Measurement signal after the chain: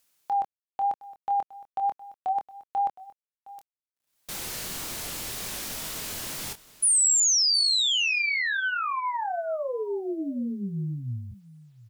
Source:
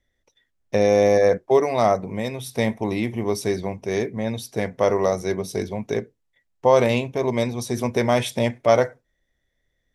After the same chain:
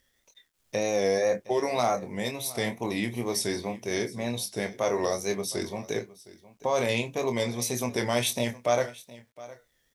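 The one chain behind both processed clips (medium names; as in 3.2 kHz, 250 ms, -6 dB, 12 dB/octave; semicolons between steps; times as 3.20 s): upward compressor, threshold -40 dBFS; bass shelf 87 Hz -6.5 dB; peak limiter -11.5 dBFS; treble shelf 2.8 kHz +10.5 dB; wow and flutter 89 cents; gate -45 dBFS, range -11 dB; doubling 25 ms -7.5 dB; delay 714 ms -19 dB; bit crusher 11-bit; trim -6 dB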